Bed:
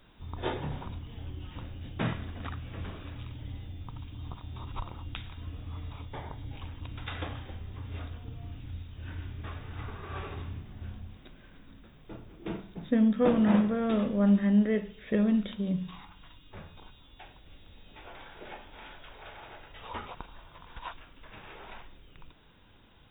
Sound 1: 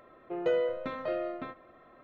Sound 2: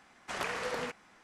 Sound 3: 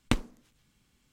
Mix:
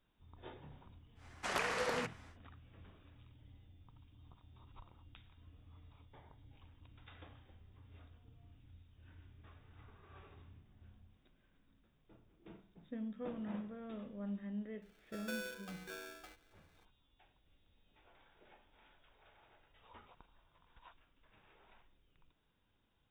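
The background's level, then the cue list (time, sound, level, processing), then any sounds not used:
bed -19.5 dB
1.15 add 2 -2.5 dB, fades 0.10 s + vocal rider within 3 dB 2 s
14.82 add 1 -16.5 dB + polarity switched at an audio rate 1000 Hz
not used: 3

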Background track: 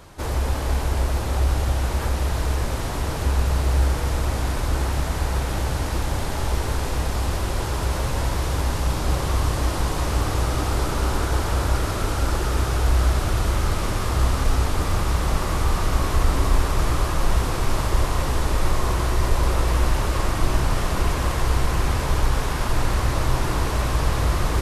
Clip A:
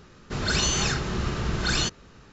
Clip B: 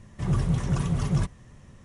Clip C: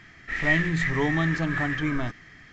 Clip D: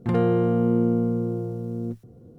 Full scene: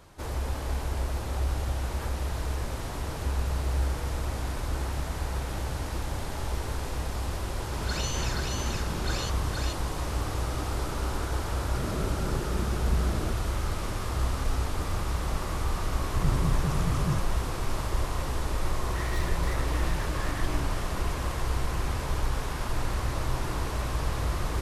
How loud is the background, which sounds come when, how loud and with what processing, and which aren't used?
background track -8 dB
7.41 add A -10 dB + echo 0.475 s -3 dB
11.44 add A -3.5 dB + elliptic low-pass 650 Hz
15.95 add B -4.5 dB
18.66 add C -7 dB + overloaded stage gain 30.5 dB
not used: D

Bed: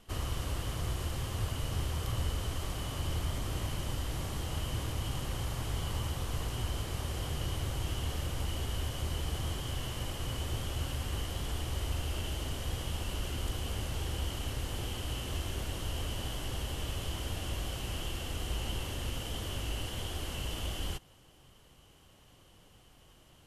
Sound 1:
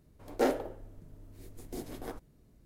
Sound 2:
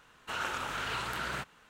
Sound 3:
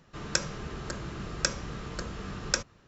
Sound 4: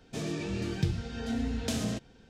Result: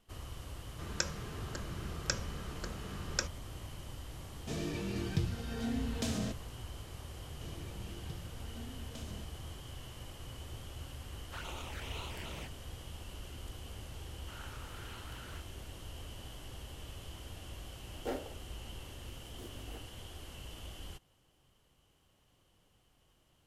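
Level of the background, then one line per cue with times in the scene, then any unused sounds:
bed -10.5 dB
0.65 add 3 -6.5 dB
4.34 add 4 -4 dB
7.27 add 4 -17.5 dB
11.04 add 2 -5.5 dB + envelope flanger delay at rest 11.6 ms, full sweep at -32 dBFS
13.99 add 2 -17 dB
17.66 add 1 -11 dB

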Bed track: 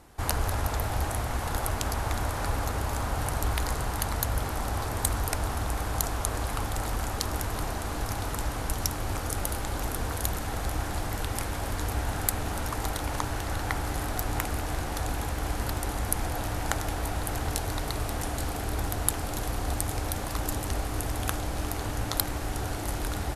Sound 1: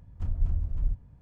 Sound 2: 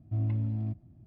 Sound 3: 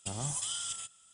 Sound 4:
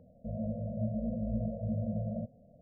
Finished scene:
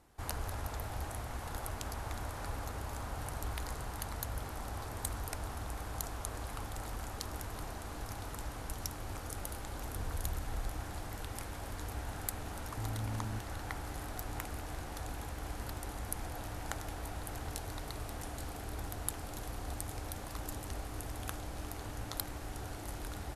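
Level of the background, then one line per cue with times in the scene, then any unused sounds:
bed track -11 dB
9.76 add 1 -2.5 dB + compressor, threshold -33 dBFS
12.66 add 2 -5.5 dB + compressor, threshold -30 dBFS
not used: 3, 4

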